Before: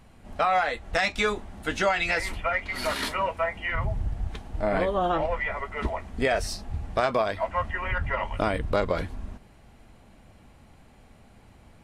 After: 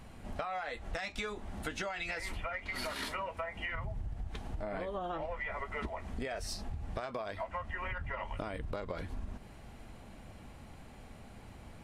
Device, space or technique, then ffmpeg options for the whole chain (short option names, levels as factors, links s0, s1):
serial compression, peaks first: -af "acompressor=threshold=0.0251:ratio=6,acompressor=threshold=0.00891:ratio=2,volume=1.26"